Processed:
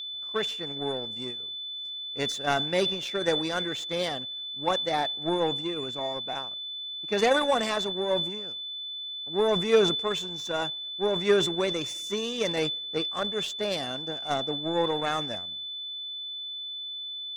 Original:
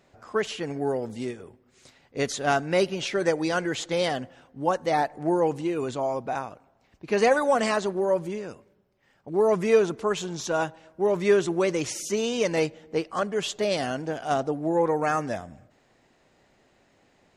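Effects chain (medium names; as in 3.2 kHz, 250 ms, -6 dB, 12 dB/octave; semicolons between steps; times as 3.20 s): power-law waveshaper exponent 1.4; whistle 3.5 kHz -34 dBFS; decay stretcher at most 66 dB/s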